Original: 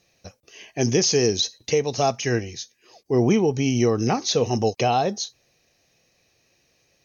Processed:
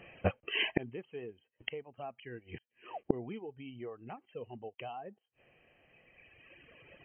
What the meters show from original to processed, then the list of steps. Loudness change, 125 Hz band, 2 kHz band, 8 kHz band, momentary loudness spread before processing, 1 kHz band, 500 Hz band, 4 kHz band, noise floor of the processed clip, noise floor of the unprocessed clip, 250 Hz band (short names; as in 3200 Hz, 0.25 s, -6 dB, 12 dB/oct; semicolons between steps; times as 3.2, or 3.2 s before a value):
-18.0 dB, -19.0 dB, -7.5 dB, n/a, 13 LU, -19.0 dB, -18.5 dB, -15.0 dB, -85 dBFS, -66 dBFS, -18.5 dB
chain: reverb removal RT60 1.8 s; low shelf 180 Hz -4.5 dB; flipped gate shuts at -27 dBFS, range -35 dB; brick-wall FIR low-pass 3200 Hz; gain +14 dB